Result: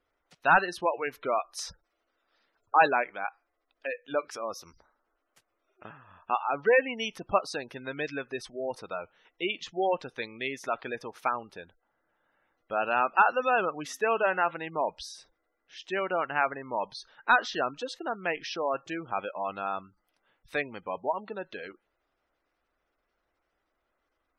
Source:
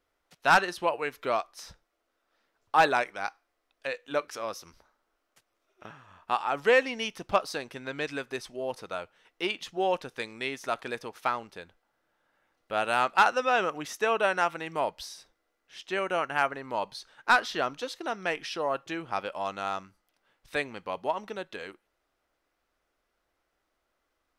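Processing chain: spectral gate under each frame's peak -20 dB strong; 1.35–2.83 s: treble shelf 3.4 kHz +11.5 dB; 13.83–14.51 s: de-hum 263.4 Hz, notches 13

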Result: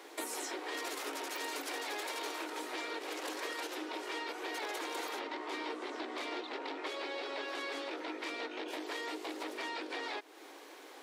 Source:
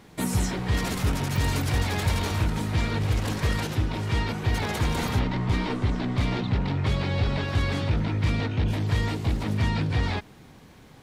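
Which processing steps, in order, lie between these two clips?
steep high-pass 300 Hz 72 dB/octave; compression 3:1, threshold -43 dBFS, peak gain reduction 12 dB; trim +2.5 dB

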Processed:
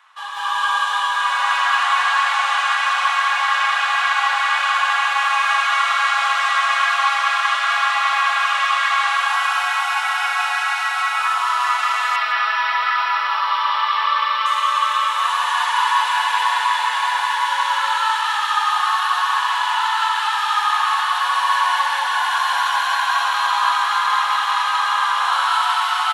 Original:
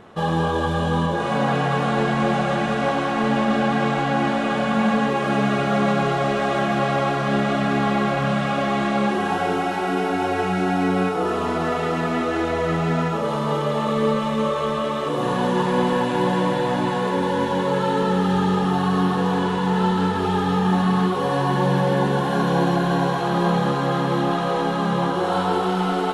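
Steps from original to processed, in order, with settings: elliptic high-pass 1 kHz, stop band 80 dB; loudspeakers at several distances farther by 64 m 0 dB, 88 m -6 dB; level rider gain up to 7 dB; 12.16–14.46 s: brick-wall FIR low-pass 5.8 kHz; bit-crushed delay 165 ms, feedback 35%, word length 7-bit, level -14.5 dB

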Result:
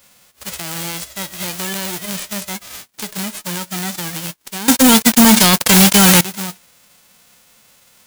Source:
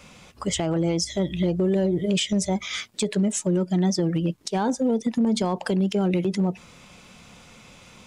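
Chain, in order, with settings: formants flattened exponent 0.1; 4.68–6.21 s: waveshaping leveller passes 5; trim -2.5 dB

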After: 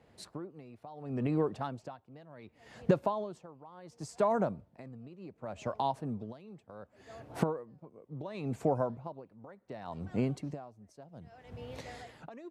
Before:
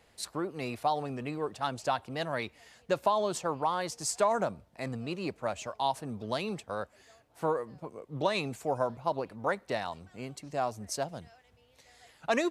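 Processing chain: recorder AGC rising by 33 dB/s; high-pass 130 Hz 12 dB/octave; tilt EQ -3.5 dB/octave; logarithmic tremolo 0.69 Hz, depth 22 dB; trim -3 dB

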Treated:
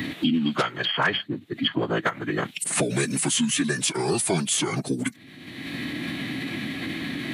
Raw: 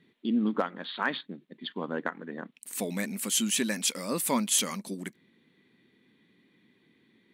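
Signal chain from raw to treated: formant-preserving pitch shift -6.5 st; three bands compressed up and down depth 100%; trim +7.5 dB

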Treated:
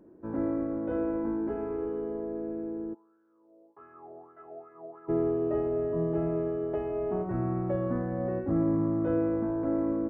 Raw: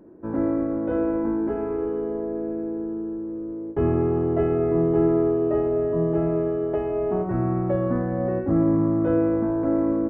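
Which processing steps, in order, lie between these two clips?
2.93–5.08 s: wah-wah 1 Hz -> 3.9 Hz 620–1500 Hz, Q 8.6; trim -6.5 dB

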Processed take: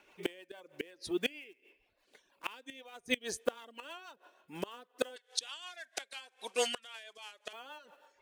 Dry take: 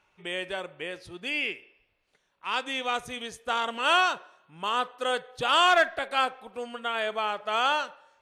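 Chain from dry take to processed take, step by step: block-companded coder 5-bit; 5.16–7.53 s: frequency weighting ITU-R 468; reverb removal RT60 0.61 s; resonant low shelf 190 Hz -11 dB, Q 1.5; band-stop 1.3 kHz, Q 7.9; compression 6:1, threshold -24 dBFS, peak gain reduction 11 dB; inverted gate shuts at -25 dBFS, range -26 dB; rotary cabinet horn 6.3 Hz; trim +9 dB

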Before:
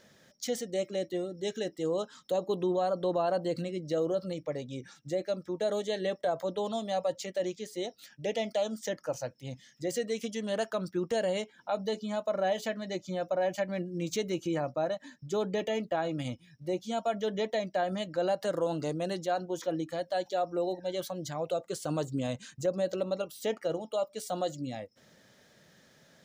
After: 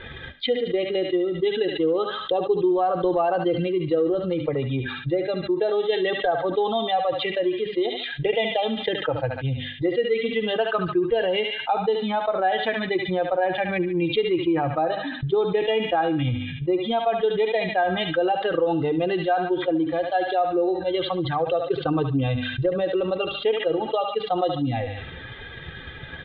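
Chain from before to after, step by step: expander on every frequency bin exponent 1.5; steep low-pass 3.7 kHz 96 dB/octave; bass shelf 97 Hz +8.5 dB; hum notches 50/100/150/200/250/300 Hz; comb 2.5 ms, depth 75%; transient shaper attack +6 dB, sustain +1 dB; on a send: thinning echo 72 ms, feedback 52%, high-pass 1.2 kHz, level -11 dB; on the sum: level flattener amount 70%

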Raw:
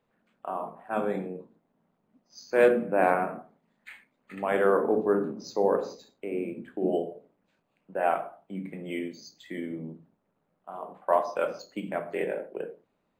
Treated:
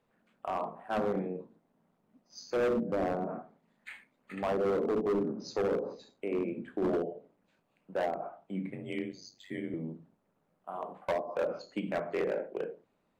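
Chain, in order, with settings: 8.70–9.74 s: ring modulator 48 Hz; low-pass that closes with the level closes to 450 Hz, closed at -21.5 dBFS; overload inside the chain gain 25.5 dB

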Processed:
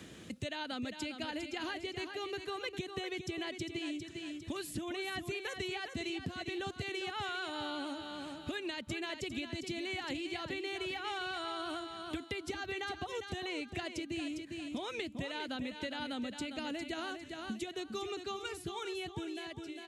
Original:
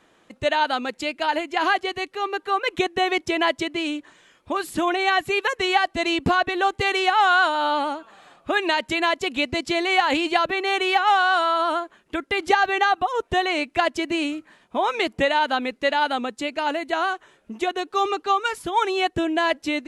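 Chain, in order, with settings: fade out at the end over 2.19 s; high-pass 73 Hz 24 dB/octave; amplifier tone stack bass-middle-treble 10-0-1; compression, threshold -49 dBFS, peak gain reduction 14.5 dB; feedback delay 403 ms, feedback 29%, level -9 dB; three bands compressed up and down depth 70%; trim +13 dB

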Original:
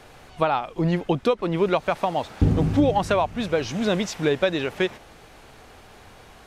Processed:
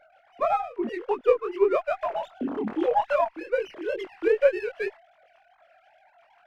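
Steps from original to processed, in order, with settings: formants replaced by sine waves; chorus 2.5 Hz, delay 20 ms, depth 5.5 ms; sliding maximum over 3 samples

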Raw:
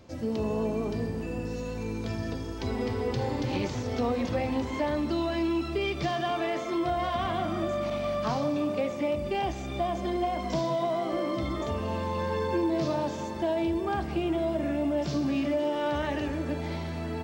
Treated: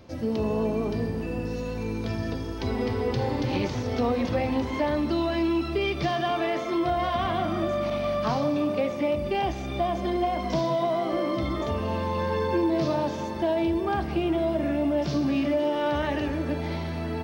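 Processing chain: peaking EQ 7.4 kHz -10 dB 0.31 oct; trim +3 dB

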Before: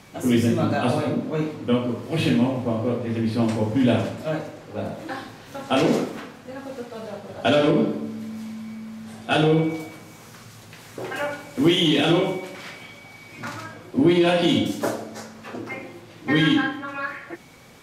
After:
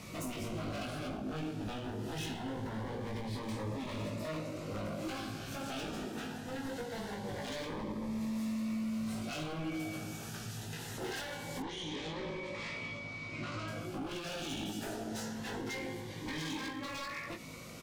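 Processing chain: dynamic bell 2.8 kHz, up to +4 dB, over -43 dBFS, Q 2; compression 4:1, threshold -33 dBFS, peak gain reduction 17 dB; peak limiter -26.5 dBFS, peak gain reduction 10 dB; wavefolder -34.5 dBFS; doubling 19 ms -4 dB; 11.62–13.68 s: distance through air 120 m; Shepard-style phaser rising 0.23 Hz

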